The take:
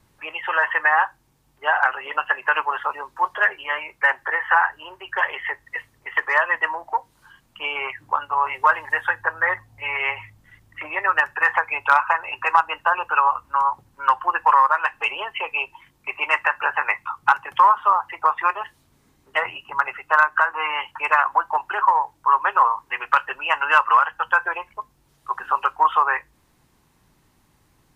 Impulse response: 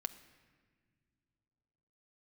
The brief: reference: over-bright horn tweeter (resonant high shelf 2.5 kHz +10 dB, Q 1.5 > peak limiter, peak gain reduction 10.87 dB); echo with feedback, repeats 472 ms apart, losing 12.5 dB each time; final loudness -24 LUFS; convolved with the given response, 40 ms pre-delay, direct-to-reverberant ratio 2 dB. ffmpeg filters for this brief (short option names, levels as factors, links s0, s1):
-filter_complex "[0:a]aecho=1:1:472|944|1416:0.237|0.0569|0.0137,asplit=2[s0][s1];[1:a]atrim=start_sample=2205,adelay=40[s2];[s1][s2]afir=irnorm=-1:irlink=0,volume=0.944[s3];[s0][s3]amix=inputs=2:normalize=0,highshelf=f=2500:t=q:w=1.5:g=10,volume=0.75,alimiter=limit=0.211:level=0:latency=1"